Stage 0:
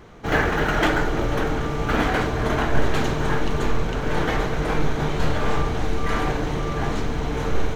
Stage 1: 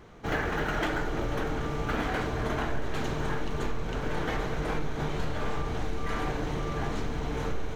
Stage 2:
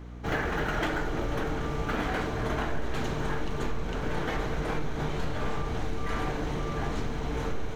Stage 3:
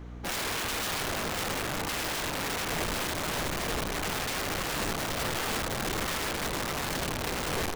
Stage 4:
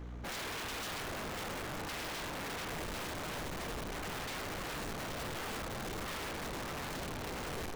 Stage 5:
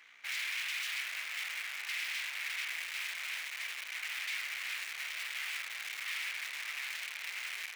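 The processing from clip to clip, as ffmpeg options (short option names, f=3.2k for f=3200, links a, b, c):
-af "acompressor=threshold=-20dB:ratio=4,volume=-5.5dB"
-af "aeval=exprs='val(0)+0.00891*(sin(2*PI*60*n/s)+sin(2*PI*2*60*n/s)/2+sin(2*PI*3*60*n/s)/3+sin(2*PI*4*60*n/s)/4+sin(2*PI*5*60*n/s)/5)':c=same"
-af "aeval=exprs='(mod(22.4*val(0)+1,2)-1)/22.4':c=same"
-af "asoftclip=type=tanh:threshold=-39dB"
-af "highpass=f=2.2k:t=q:w=3.4"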